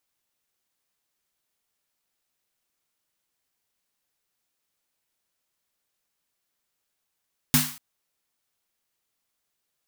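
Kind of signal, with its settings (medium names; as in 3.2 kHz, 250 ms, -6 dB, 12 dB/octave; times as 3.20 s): snare drum length 0.24 s, tones 150 Hz, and 250 Hz, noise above 860 Hz, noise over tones 1 dB, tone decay 0.31 s, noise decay 0.47 s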